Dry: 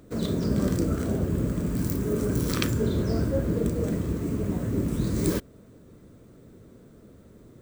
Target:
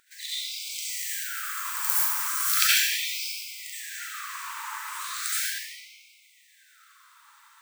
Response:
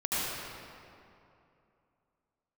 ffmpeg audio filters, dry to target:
-filter_complex "[0:a]asettb=1/sr,asplit=3[a][b][c];[a]atrim=end=0.824[d];[b]atrim=start=0.82:end=3.24,asetpts=PTS-STARTPTS,afade=t=in:d=0.004:c=qsin,afade=t=out:st=2.416:d=0.004:c=qsin,highshelf=f=8.6k:g=9[e];[c]atrim=start=3.236[f];[d][e]acrossfade=d=0.004:c1=hsin:c2=qsin[g];[g][f]acrossfade=d=0.004:c1=qsin:c2=hsin[h];[1:a]atrim=start_sample=2205,asetrate=48510,aresample=44100[i];[h][i]afir=irnorm=-1:irlink=0,afftfilt=real='re*gte(b*sr/1024,830*pow(2100/830,0.5+0.5*sin(2*PI*0.37*pts/sr)))':imag='im*gte(b*sr/1024,830*pow(2100/830,0.5+0.5*sin(2*PI*0.37*pts/sr)))':win_size=1024:overlap=0.75,volume=4dB"

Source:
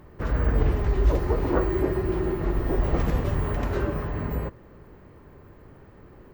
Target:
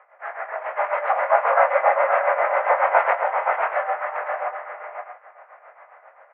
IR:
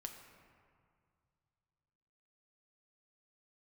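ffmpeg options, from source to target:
-filter_complex "[0:a]asettb=1/sr,asplit=3[a][b][c];[a]atrim=end=0.774[d];[b]atrim=start=0.77:end=3.13,asetpts=PTS-STARTPTS,afade=t=in:d=0.004:c=qsin,afade=t=out:st=2.356:d=0.004:c=qsin,acontrast=86[e];[c]atrim=start=3.126[f];[d][e]acrossfade=d=0.004:c1=hsin:c2=qsin[g];[g][f]acrossfade=d=0.004:c1=qsin:c2=hsin,tremolo=f=7.4:d=0.77,dynaudnorm=f=220:g=5:m=5.5dB,highpass=f=490:t=q:w=0.5412,highpass=f=490:t=q:w=1.307,lowpass=f=2.1k:t=q:w=0.5176,lowpass=f=2.1k:t=q:w=0.7071,lowpass=f=2.1k:t=q:w=1.932,afreqshift=190,asplit=2[h][i];[i]adelay=22,volume=-8dB[j];[h][j]amix=inputs=2:normalize=0,aecho=1:1:434|526|636:0.141|0.501|0.266,volume=6dB"

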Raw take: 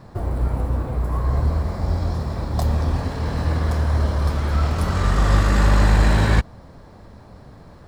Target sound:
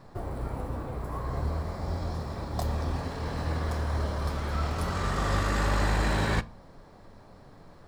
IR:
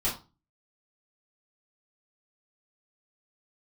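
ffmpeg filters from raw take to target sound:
-filter_complex "[0:a]equalizer=f=84:w=0.6:g=-6,asplit=2[a][b];[1:a]atrim=start_sample=2205[c];[b][c]afir=irnorm=-1:irlink=0,volume=-23dB[d];[a][d]amix=inputs=2:normalize=0,volume=-6dB"

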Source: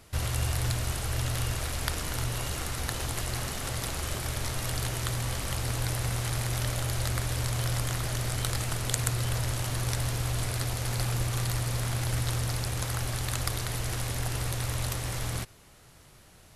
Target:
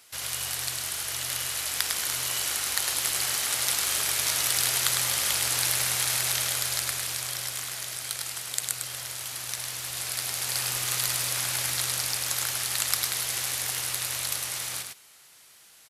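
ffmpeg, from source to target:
-af "highpass=f=530:p=1,tiltshelf=f=1.4k:g=-6.5,dynaudnorm=f=120:g=31:m=11.5dB,aecho=1:1:108:0.562,asetrate=45938,aresample=44100,volume=-1dB"

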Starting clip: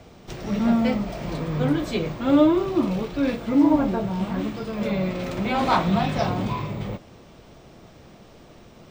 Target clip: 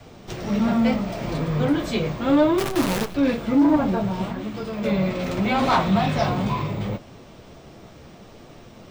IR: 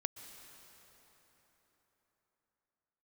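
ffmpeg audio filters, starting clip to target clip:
-filter_complex "[0:a]adynamicequalizer=threshold=0.0251:dfrequency=340:dqfactor=2:tfrequency=340:tqfactor=2:attack=5:release=100:ratio=0.375:range=2:mode=cutabove:tftype=bell,asettb=1/sr,asplit=3[a][b][c];[a]atrim=end=2.584[d];[b]atrim=start=2.58:end=3.15,asetpts=PTS-STARTPTS,afade=t=in:d=0.004:c=qsin,afade=t=out:st=0.566:d=0.004:c=qsin,acrusher=bits=5:dc=4:mix=0:aa=0.000001[e];[c]atrim=start=3.146[f];[d][e]acrossfade=d=0.004:c1=hsin:c2=qsin[g];[g][f]acrossfade=d=0.004:c1=qsin:c2=hsin,asettb=1/sr,asplit=3[h][i][j];[h]atrim=end=4.254[k];[i]atrim=start=4.25:end=4.84,asetpts=PTS-STARTPTS,afade=t=in:d=0.004:c=qsin,afade=t=out:st=0.586:d=0.004:c=qsin,acompressor=threshold=-29dB:ratio=5[l];[j]atrim=start=4.836[m];[k][l]acrossfade=d=0.004:c1=hsin:c2=qsin[n];[n][m]acrossfade=d=0.004:c1=qsin:c2=hsin,flanger=delay=6.8:depth=8.5:regen=-41:speed=0.7:shape=triangular,asoftclip=type=tanh:threshold=-17.5dB,volume=7dB"

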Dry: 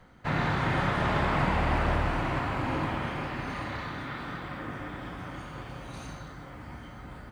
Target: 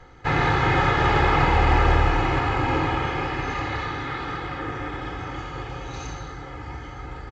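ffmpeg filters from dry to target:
-af "aecho=1:1:2.4:0.73,volume=6dB" -ar 16000 -c:a pcm_mulaw

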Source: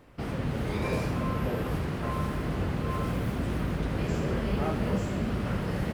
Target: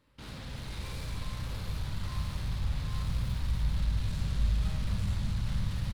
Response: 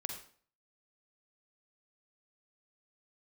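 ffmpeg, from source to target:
-filter_complex "[0:a]asuperstop=centerf=720:order=4:qfactor=4.1,asplit=9[a][b][c][d][e][f][g][h][i];[b]adelay=235,afreqshift=-54,volume=-6.5dB[j];[c]adelay=470,afreqshift=-108,volume=-10.8dB[k];[d]adelay=705,afreqshift=-162,volume=-15.1dB[l];[e]adelay=940,afreqshift=-216,volume=-19.4dB[m];[f]adelay=1175,afreqshift=-270,volume=-23.7dB[n];[g]adelay=1410,afreqshift=-324,volume=-28dB[o];[h]adelay=1645,afreqshift=-378,volume=-32.3dB[p];[i]adelay=1880,afreqshift=-432,volume=-36.6dB[q];[a][j][k][l][m][n][o][p][q]amix=inputs=9:normalize=0,asoftclip=type=tanh:threshold=-29.5dB,aeval=exprs='0.0335*(cos(1*acos(clip(val(0)/0.0335,-1,1)))-cos(1*PI/2))+0.00841*(cos(7*acos(clip(val(0)/0.0335,-1,1)))-cos(7*PI/2))':c=same,equalizer=f=400:t=o:w=0.67:g=-7,equalizer=f=4k:t=o:w=0.67:g=9,equalizer=f=10k:t=o:w=0.67:g=5[r];[1:a]atrim=start_sample=2205[s];[r][s]afir=irnorm=-1:irlink=0,asubboost=boost=9.5:cutoff=110,volume=-8.5dB"

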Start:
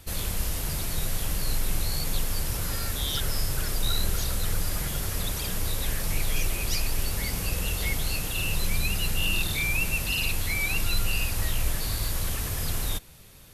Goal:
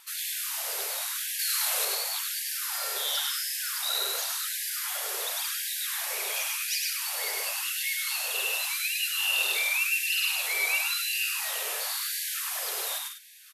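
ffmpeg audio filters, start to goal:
-filter_complex "[0:a]asettb=1/sr,asplit=3[a][b][c];[a]atrim=end=1.394[d];[b]atrim=start=1.39:end=1.85,asetpts=PTS-STARTPTS,afade=t=in:d=0.004:c=qsin,afade=t=out:st=0.456:d=0.004:c=qsin,acontrast=34[e];[c]atrim=start=1.846[f];[d][e]acrossfade=d=0.004:c1=hsin:c2=qsin[g];[g][f]acrossfade=d=0.004:c1=qsin:c2=hsin,aecho=1:1:102|151.6|204.1:0.708|0.398|0.251,afftfilt=real='re*gte(b*sr/1024,370*pow(1600/370,0.5+0.5*sin(2*PI*0.92*pts/sr)))':imag='im*gte(b*sr/1024,370*pow(1600/370,0.5+0.5*sin(2*PI*0.92*pts/sr)))':win_size=1024:overlap=0.75"

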